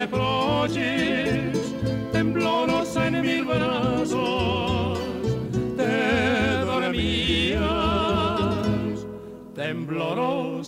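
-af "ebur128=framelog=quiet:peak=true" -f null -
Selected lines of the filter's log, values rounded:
Integrated loudness:
  I:         -23.7 LUFS
  Threshold: -33.8 LUFS
Loudness range:
  LRA:         1.8 LU
  Threshold: -43.6 LUFS
  LRA low:   -24.4 LUFS
  LRA high:  -22.6 LUFS
True peak:
  Peak:       -9.7 dBFS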